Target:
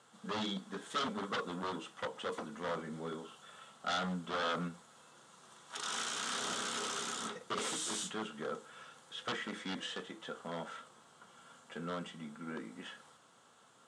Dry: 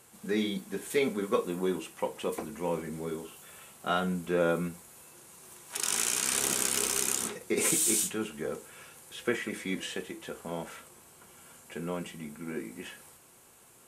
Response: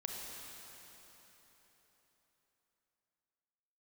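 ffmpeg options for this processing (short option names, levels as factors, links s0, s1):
-af "highshelf=f=5100:g=-8,aeval=exprs='0.0398*(abs(mod(val(0)/0.0398+3,4)-2)-1)':c=same,highpass=170,equalizer=f=360:t=q:w=4:g=-9,equalizer=f=1300:t=q:w=4:g=7,equalizer=f=2400:t=q:w=4:g=-8,equalizer=f=3400:t=q:w=4:g=7,lowpass=f=8100:w=0.5412,lowpass=f=8100:w=1.3066,volume=0.75"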